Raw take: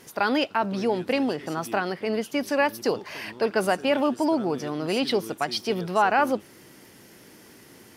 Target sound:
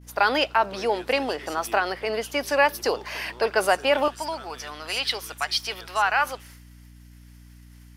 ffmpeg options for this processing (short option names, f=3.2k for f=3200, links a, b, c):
-af "agate=range=-33dB:threshold=-41dB:ratio=3:detection=peak,asetnsamples=n=441:p=0,asendcmd='4.08 highpass f 1200',highpass=520,aeval=exprs='val(0)+0.00282*(sin(2*PI*60*n/s)+sin(2*PI*2*60*n/s)/2+sin(2*PI*3*60*n/s)/3+sin(2*PI*4*60*n/s)/4+sin(2*PI*5*60*n/s)/5)':c=same,volume=4.5dB"